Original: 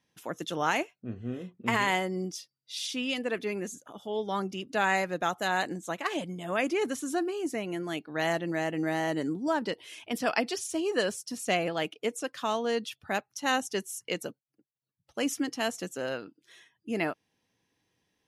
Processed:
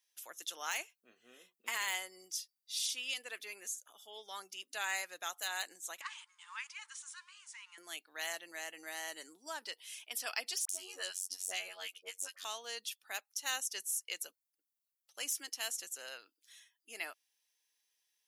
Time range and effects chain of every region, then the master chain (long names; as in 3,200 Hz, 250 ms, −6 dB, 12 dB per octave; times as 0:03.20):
0:06.01–0:07.78: mu-law and A-law mismatch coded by mu + linear-phase brick-wall band-pass 860–10,000 Hz + spectral tilt −4 dB per octave
0:10.65–0:12.45: phases set to zero 92.7 Hz + all-pass dispersion highs, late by 44 ms, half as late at 1,100 Hz
whole clip: high-pass filter 360 Hz 12 dB per octave; de-essing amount 65%; first difference; level +3 dB